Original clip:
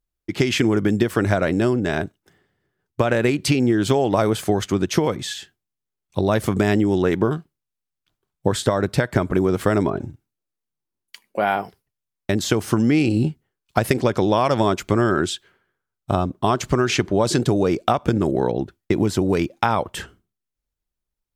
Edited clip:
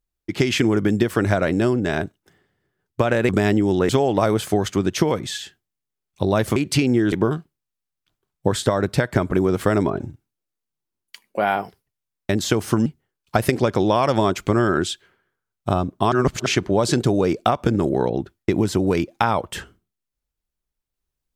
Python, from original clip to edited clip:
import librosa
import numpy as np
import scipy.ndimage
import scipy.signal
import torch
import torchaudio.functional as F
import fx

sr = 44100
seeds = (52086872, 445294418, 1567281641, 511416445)

y = fx.edit(x, sr, fx.swap(start_s=3.29, length_s=0.56, other_s=6.52, other_length_s=0.6),
    fx.cut(start_s=12.86, length_s=0.42),
    fx.reverse_span(start_s=16.54, length_s=0.34), tone=tone)